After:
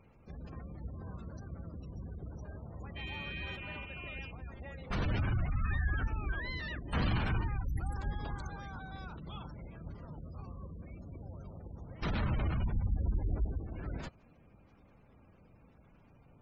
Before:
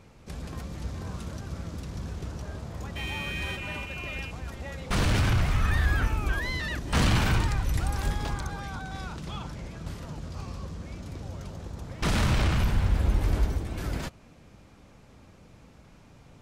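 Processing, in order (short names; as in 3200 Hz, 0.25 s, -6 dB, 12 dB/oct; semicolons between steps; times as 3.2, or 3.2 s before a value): spectral gate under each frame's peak -25 dB strong; gain -8 dB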